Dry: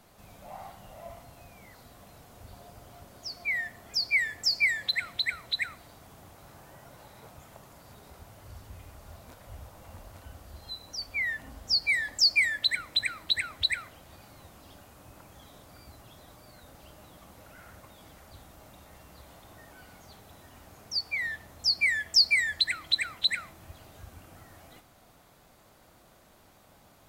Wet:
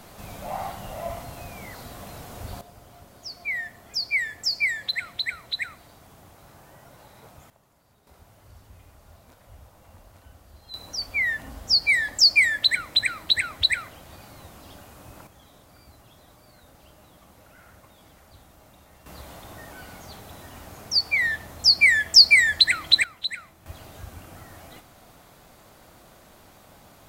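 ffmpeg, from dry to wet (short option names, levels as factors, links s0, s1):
-af "asetnsamples=n=441:p=0,asendcmd='2.61 volume volume 1dB;7.5 volume volume -11dB;8.07 volume volume -3.5dB;10.74 volume volume 6dB;15.27 volume volume -1dB;19.06 volume volume 9dB;23.04 volume volume -3dB;23.66 volume volume 7dB',volume=3.98"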